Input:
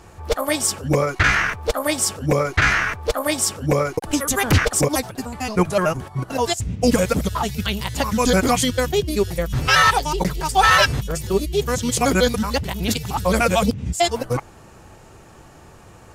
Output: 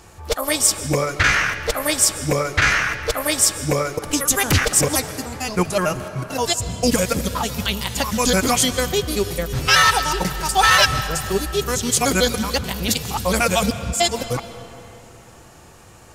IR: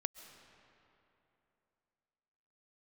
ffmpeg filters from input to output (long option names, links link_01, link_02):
-filter_complex "[0:a]asplit=2[link_01][link_02];[1:a]atrim=start_sample=2205,highshelf=frequency=2300:gain=9.5[link_03];[link_02][link_03]afir=irnorm=-1:irlink=0,volume=10dB[link_04];[link_01][link_04]amix=inputs=2:normalize=0,volume=-13.5dB"